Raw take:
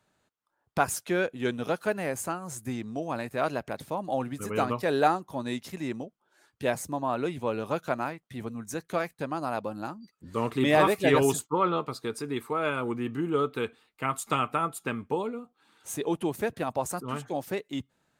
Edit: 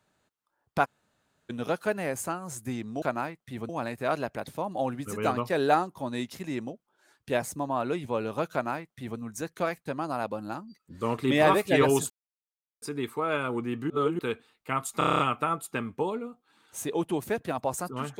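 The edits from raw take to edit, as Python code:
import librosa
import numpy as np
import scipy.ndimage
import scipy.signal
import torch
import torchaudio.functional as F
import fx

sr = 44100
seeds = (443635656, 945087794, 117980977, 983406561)

y = fx.edit(x, sr, fx.room_tone_fill(start_s=0.85, length_s=0.65, crossfade_s=0.02),
    fx.duplicate(start_s=7.85, length_s=0.67, to_s=3.02),
    fx.silence(start_s=11.43, length_s=0.72),
    fx.reverse_span(start_s=13.23, length_s=0.29),
    fx.stutter(start_s=14.31, slice_s=0.03, count=8), tone=tone)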